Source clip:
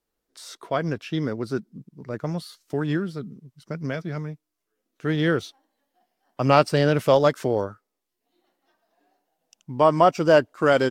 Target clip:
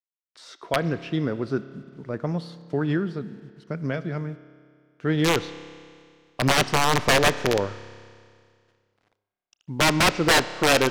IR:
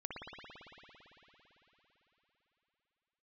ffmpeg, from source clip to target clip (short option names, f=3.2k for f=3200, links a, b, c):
-filter_complex "[0:a]acrusher=bits=9:mix=0:aa=0.000001,aeval=exprs='(mod(3.98*val(0)+1,2)-1)/3.98':c=same,adynamicsmooth=sensitivity=1:basefreq=4.8k,asplit=2[a][b];[1:a]atrim=start_sample=2205,asetrate=83790,aresample=44100[c];[b][c]afir=irnorm=-1:irlink=0,volume=-8dB[d];[a][d]amix=inputs=2:normalize=0"